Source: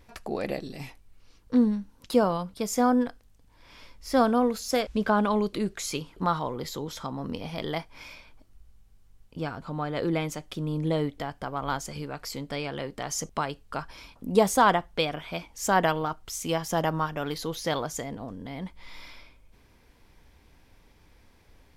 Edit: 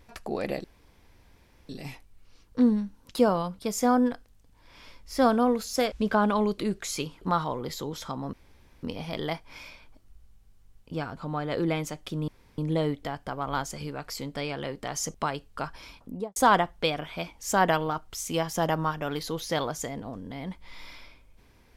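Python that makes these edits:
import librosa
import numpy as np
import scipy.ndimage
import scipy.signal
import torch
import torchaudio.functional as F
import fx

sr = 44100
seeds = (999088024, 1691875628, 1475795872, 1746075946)

y = fx.studio_fade_out(x, sr, start_s=14.11, length_s=0.4)
y = fx.edit(y, sr, fx.insert_room_tone(at_s=0.64, length_s=1.05),
    fx.insert_room_tone(at_s=7.28, length_s=0.5),
    fx.insert_room_tone(at_s=10.73, length_s=0.3), tone=tone)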